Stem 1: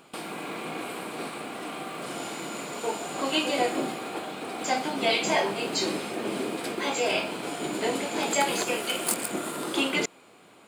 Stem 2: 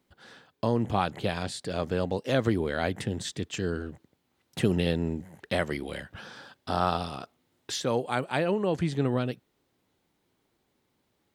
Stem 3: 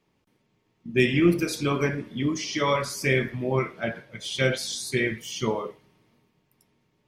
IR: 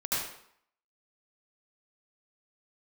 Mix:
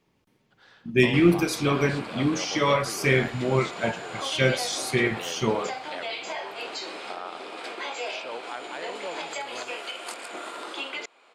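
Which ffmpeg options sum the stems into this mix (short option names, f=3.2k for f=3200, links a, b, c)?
-filter_complex "[0:a]adelay=1000,volume=0dB[a];[1:a]adelay=400,volume=-3dB[b];[2:a]volume=1.5dB[c];[a][b]amix=inputs=2:normalize=0,highpass=580,lowpass=5k,alimiter=limit=-23dB:level=0:latency=1:release=309,volume=0dB[d];[c][d]amix=inputs=2:normalize=0"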